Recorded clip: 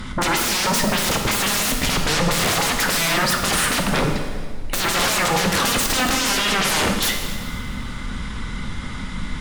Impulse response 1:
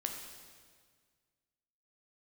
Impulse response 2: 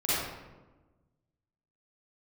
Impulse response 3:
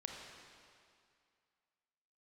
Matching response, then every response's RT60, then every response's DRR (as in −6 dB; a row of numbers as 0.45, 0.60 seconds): 1; 1.7, 1.2, 2.3 seconds; 2.0, −11.5, 0.5 decibels